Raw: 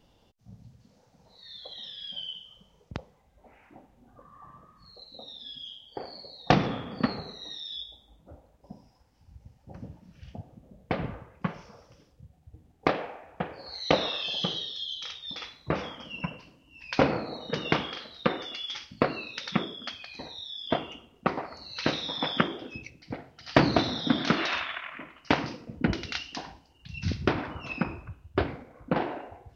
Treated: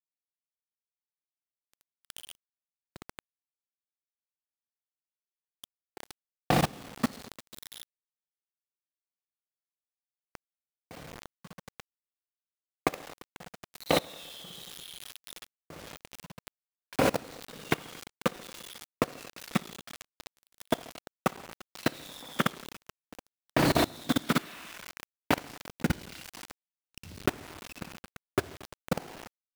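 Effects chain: reverse bouncing-ball echo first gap 60 ms, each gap 1.25×, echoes 5; bit crusher 5-bit; level held to a coarse grid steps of 23 dB

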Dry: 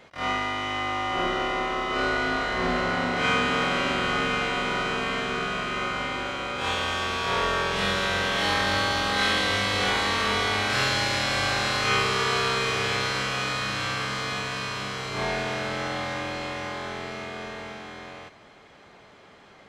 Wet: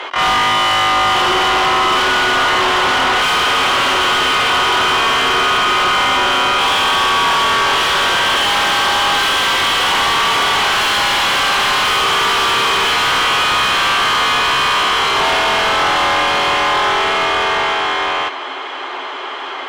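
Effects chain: in parallel at -9 dB: sine folder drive 17 dB, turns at -10 dBFS; on the sum: rippled Chebyshev high-pass 260 Hz, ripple 9 dB; peaking EQ 3.1 kHz +10 dB 0.37 oct; overdrive pedal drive 29 dB, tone 3.1 kHz, clips at -2 dBFS; trim -3.5 dB

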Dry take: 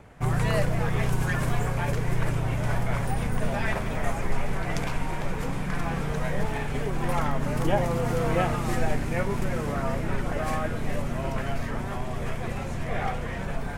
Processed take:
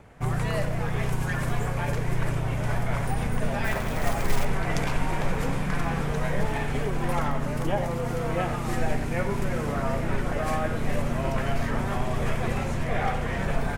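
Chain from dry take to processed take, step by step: gain riding 0.5 s; 3.64–4.45 s: short-mantissa float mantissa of 2-bit; speakerphone echo 90 ms, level -9 dB

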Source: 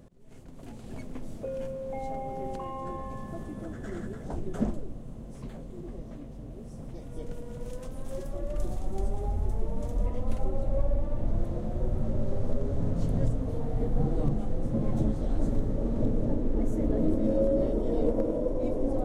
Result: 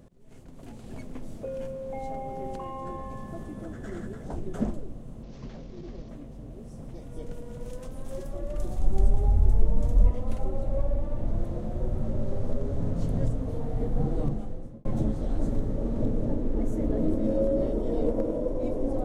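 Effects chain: 5.23–6.09 s: CVSD coder 32 kbps; 8.78–10.11 s: bass shelf 140 Hz +10 dB; 14.21–14.85 s: fade out

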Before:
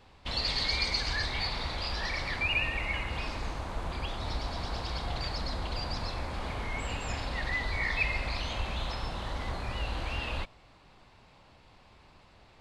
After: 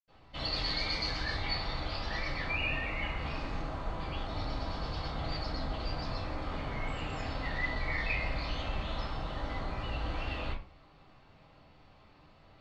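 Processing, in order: low-pass 5.7 kHz 12 dB/octave; reverberation RT60 0.35 s, pre-delay 76 ms, DRR -60 dB; trim +3.5 dB

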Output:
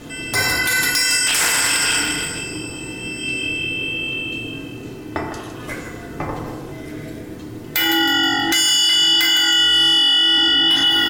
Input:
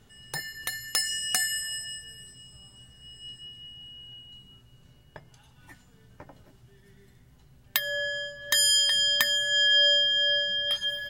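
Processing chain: 1.27–2.39 s: cycle switcher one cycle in 3, inverted; 9.15–10.38 s: high-pass 650 Hz; saturation -17 dBFS, distortion -18 dB; ring modulator 250 Hz; frequency-shifting echo 159 ms, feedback 32%, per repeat -45 Hz, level -10 dB; FDN reverb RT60 1.2 s, low-frequency decay 0.75×, high-frequency decay 0.35×, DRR -1.5 dB; loudness maximiser +29 dB; trim -7 dB

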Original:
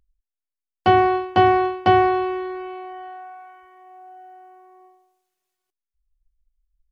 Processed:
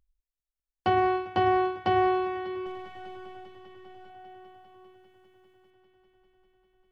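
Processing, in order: 2.66–4.10 s: partial rectifier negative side -12 dB; peak limiter -10.5 dBFS, peak gain reduction 6 dB; multi-head delay 199 ms, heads all three, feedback 74%, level -22.5 dB; trim -5.5 dB

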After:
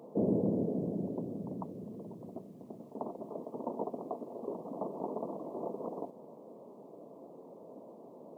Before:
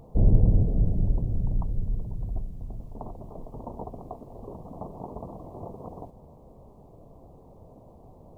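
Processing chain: high-pass 200 Hz 24 dB/octave; peaking EQ 410 Hz +7 dB 2.4 oct; band-stop 760 Hz, Q 12; trim -3 dB

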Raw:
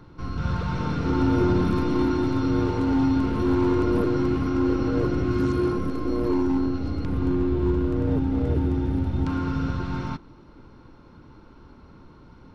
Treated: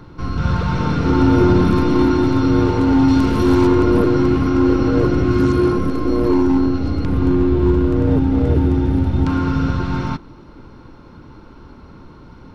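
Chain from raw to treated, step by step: 3.08–3.67 s: treble shelf 4.5 kHz +11 dB; trim +8 dB

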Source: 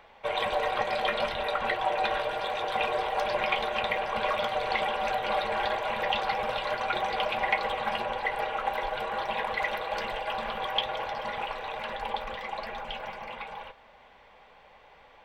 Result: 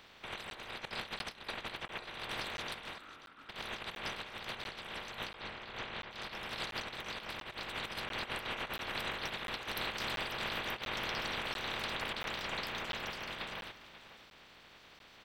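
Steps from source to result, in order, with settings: spectral peaks clipped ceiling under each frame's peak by 25 dB; 0.85–1.99 s: gate -28 dBFS, range -22 dB; compressor with a negative ratio -34 dBFS, ratio -0.5; 2.98–3.49 s: two resonant band-passes 610 Hz, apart 2.2 oct; 5.33–6.11 s: distance through air 120 m; delay 537 ms -15 dB; crackling interface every 0.69 s, samples 512, zero, from 0.50 s; trim -6.5 dB

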